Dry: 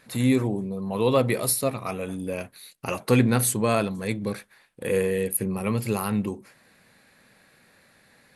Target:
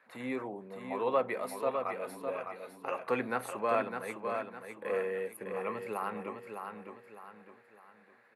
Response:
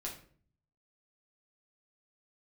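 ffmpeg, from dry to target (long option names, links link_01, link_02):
-filter_complex "[0:a]highpass=250,acrossover=split=570 2100:gain=0.224 1 0.0708[link_01][link_02][link_03];[link_01][link_02][link_03]amix=inputs=3:normalize=0,aecho=1:1:607|1214|1821|2428|3035:0.501|0.19|0.0724|0.0275|0.0105,volume=-2.5dB"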